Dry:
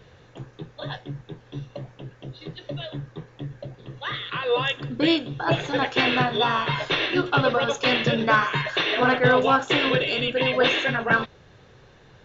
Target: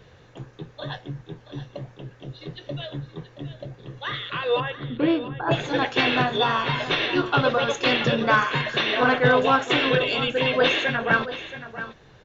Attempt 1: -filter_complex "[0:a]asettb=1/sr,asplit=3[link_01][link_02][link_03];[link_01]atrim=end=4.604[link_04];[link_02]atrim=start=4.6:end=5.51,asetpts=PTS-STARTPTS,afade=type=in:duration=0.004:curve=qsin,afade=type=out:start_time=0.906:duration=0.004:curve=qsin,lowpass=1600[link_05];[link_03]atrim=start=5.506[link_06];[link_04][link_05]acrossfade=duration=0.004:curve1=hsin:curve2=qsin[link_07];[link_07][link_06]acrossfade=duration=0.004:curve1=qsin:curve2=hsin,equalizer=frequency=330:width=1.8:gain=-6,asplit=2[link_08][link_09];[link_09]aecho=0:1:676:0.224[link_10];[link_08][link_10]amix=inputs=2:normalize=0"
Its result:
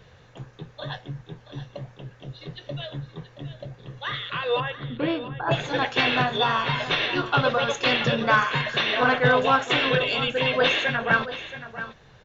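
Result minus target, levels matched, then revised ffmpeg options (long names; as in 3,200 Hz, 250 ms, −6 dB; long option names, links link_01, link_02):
250 Hz band −3.0 dB
-filter_complex "[0:a]asettb=1/sr,asplit=3[link_01][link_02][link_03];[link_01]atrim=end=4.604[link_04];[link_02]atrim=start=4.6:end=5.51,asetpts=PTS-STARTPTS,afade=type=in:duration=0.004:curve=qsin,afade=type=out:start_time=0.906:duration=0.004:curve=qsin,lowpass=1600[link_05];[link_03]atrim=start=5.506[link_06];[link_04][link_05]acrossfade=duration=0.004:curve1=hsin:curve2=qsin[link_07];[link_07][link_06]acrossfade=duration=0.004:curve1=qsin:curve2=hsin,asplit=2[link_08][link_09];[link_09]aecho=0:1:676:0.224[link_10];[link_08][link_10]amix=inputs=2:normalize=0"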